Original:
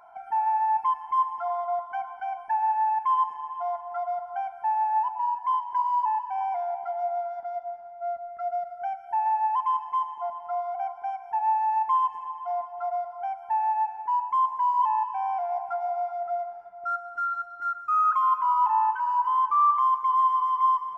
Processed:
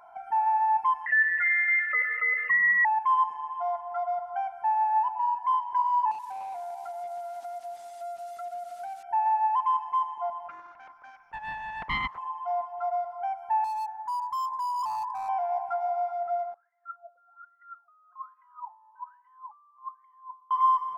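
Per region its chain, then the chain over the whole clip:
1.06–2.85 s: frequency inversion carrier 2.8 kHz + level flattener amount 50%
6.11–9.03 s: one-bit delta coder 64 kbps, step -47 dBFS + compression 4:1, threshold -35 dBFS + high-pass 180 Hz 6 dB/octave
10.48–12.18 s: static phaser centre 2.7 kHz, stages 6 + loudspeaker Doppler distortion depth 0.66 ms
13.64–15.29 s: overload inside the chain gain 27.5 dB + static phaser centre 1.2 kHz, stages 4
16.54–20.51 s: small resonant body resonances 520/1100/1600 Hz, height 10 dB, ringing for 30 ms + compression 5:1, threshold -30 dBFS + wah-wah 1.2 Hz 550–2000 Hz, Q 22
whole clip: none

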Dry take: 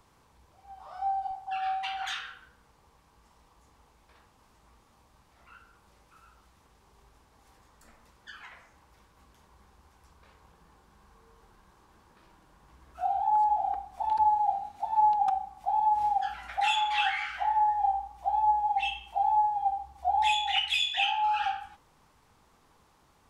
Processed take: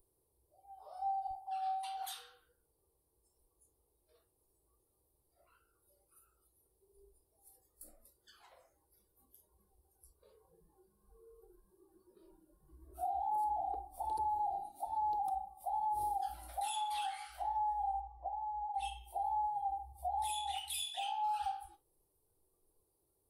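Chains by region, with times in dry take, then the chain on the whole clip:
18.00–18.74 s: compression 12:1, threshold -29 dBFS + brick-wall FIR low-pass 2.1 kHz
whole clip: spectral noise reduction 16 dB; FFT filter 110 Hz 0 dB, 230 Hz -10 dB, 370 Hz +9 dB, 1.7 kHz -23 dB, 2.6 kHz -20 dB, 4.3 kHz -5 dB, 6.8 kHz -9 dB, 9.6 kHz +15 dB; peak limiter -30 dBFS

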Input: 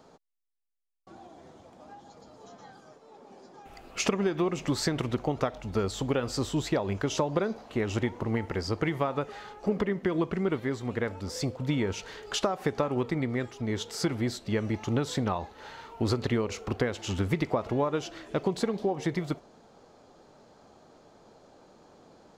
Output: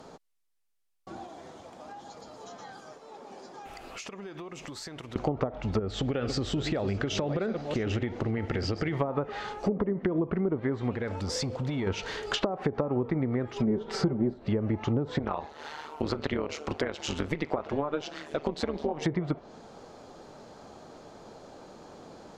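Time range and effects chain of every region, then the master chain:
1.24–5.16 s: bass shelf 380 Hz -7 dB + compression, threshold -47 dBFS
5.79–8.93 s: chunks repeated in reverse 419 ms, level -13 dB + peaking EQ 980 Hz -11.5 dB 0.3 oct + compression 4:1, threshold -29 dBFS
10.96–11.87 s: compression 4:1, threshold -32 dBFS + transformer saturation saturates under 300 Hz
13.56–14.34 s: comb 5.2 ms, depth 70% + waveshaping leveller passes 1
15.19–19.02 s: high-pass 250 Hz 6 dB/octave + AM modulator 150 Hz, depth 70%
whole clip: low-pass that closes with the level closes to 650 Hz, closed at -23 dBFS; compression 2.5:1, threshold -35 dBFS; trim +7.5 dB

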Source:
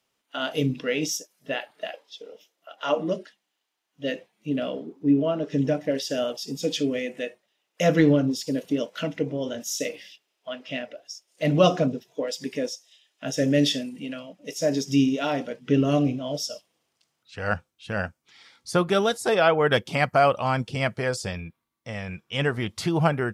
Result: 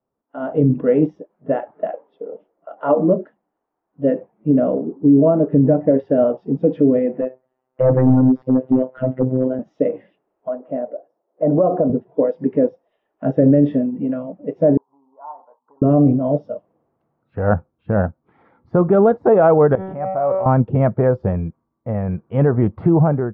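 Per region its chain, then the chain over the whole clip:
7.21–9.59 s: robot voice 129 Hz + hard clipper -21.5 dBFS
10.49–11.90 s: band-pass filter 580 Hz, Q 0.92 + compression 5:1, threshold -23 dBFS
14.77–15.82 s: compression 3:1, threshold -24 dBFS + Butterworth band-pass 970 Hz, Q 4.2 + distance through air 460 m
19.75–20.46 s: dynamic bell 710 Hz, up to +6 dB, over -30 dBFS, Q 0.88 + feedback comb 190 Hz, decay 1.6 s, mix 90% + decay stretcher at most 28 dB/s
whole clip: Bessel low-pass 720 Hz, order 4; peak limiter -18.5 dBFS; level rider gain up to 11.5 dB; trim +2 dB

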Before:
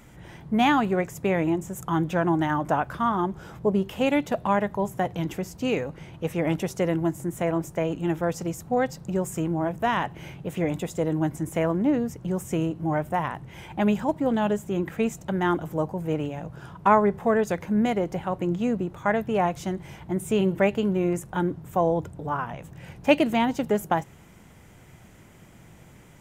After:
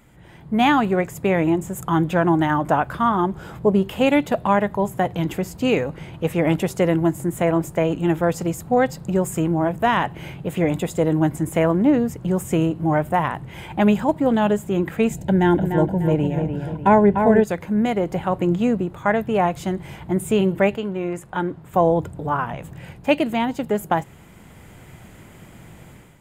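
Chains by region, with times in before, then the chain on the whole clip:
15.10–17.44 s: Butterworth band-stop 1.2 kHz, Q 3.2 + bass shelf 420 Hz +7.5 dB + feedback echo behind a low-pass 297 ms, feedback 40%, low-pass 2.7 kHz, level -6 dB
20.76–21.74 s: low-pass 3.8 kHz 6 dB/octave + bass shelf 430 Hz -8.5 dB
whole clip: level rider gain up to 10 dB; peaking EQ 5.8 kHz -9 dB 0.22 oct; trim -3 dB

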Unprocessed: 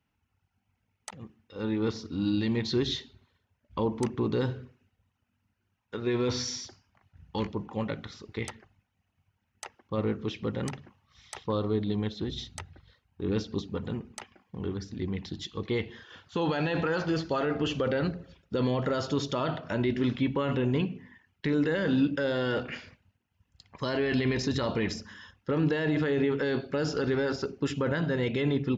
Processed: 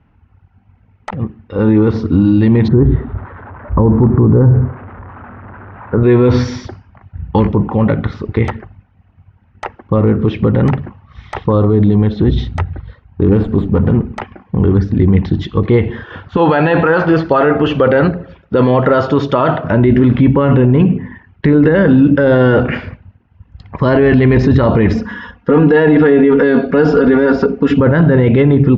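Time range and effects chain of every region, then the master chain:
2.68–6.03 s: zero-crossing glitches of -26 dBFS + low-pass 1.4 kHz 24 dB/octave + bass shelf 190 Hz +9.5 dB
13.29–14.04 s: low-pass 3.9 kHz + sliding maximum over 5 samples
16.37–19.64 s: high-pass 59 Hz + bass shelf 340 Hz -11 dB
24.95–27.80 s: bass shelf 140 Hz -9.5 dB + comb 4.2 ms, depth 82%
whole clip: low-pass 1.6 kHz 12 dB/octave; bass shelf 130 Hz +9 dB; loudness maximiser +23 dB; trim -1 dB

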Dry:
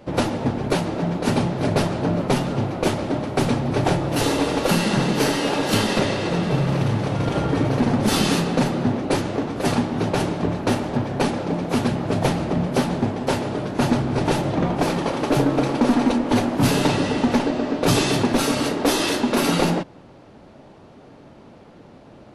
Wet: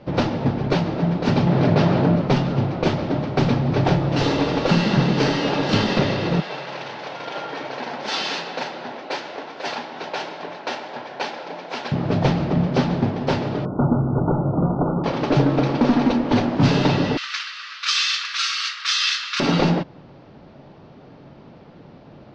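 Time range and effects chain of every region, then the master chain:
1.47–2.16 s: high-pass 100 Hz + treble shelf 5.4 kHz -7.5 dB + level flattener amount 70%
6.40–11.92 s: high-pass 720 Hz + band-stop 1.2 kHz, Q 9.2
13.65–15.04 s: brick-wall FIR band-stop 1.5–6.4 kHz + distance through air 450 m
17.17–19.40 s: elliptic high-pass 1.2 kHz + tilt EQ +3.5 dB/octave
whole clip: steep low-pass 5.5 kHz 36 dB/octave; peaking EQ 150 Hz +6.5 dB 0.45 oct

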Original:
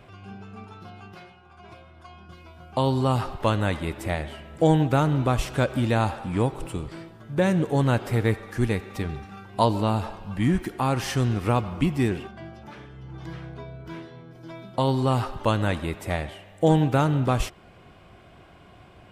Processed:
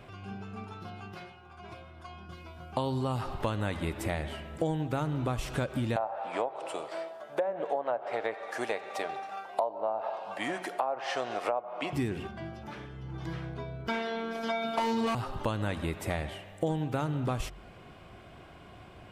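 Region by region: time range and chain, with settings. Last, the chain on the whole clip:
5.96–11.93 s: resonant high-pass 640 Hz, resonance Q 4.4 + low-pass that closes with the level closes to 1.2 kHz, closed at -15.5 dBFS
13.88–15.15 s: robot voice 227 Hz + overdrive pedal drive 27 dB, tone 5.3 kHz, clips at -10.5 dBFS
whole clip: de-hum 45.67 Hz, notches 4; compression, threshold -28 dBFS

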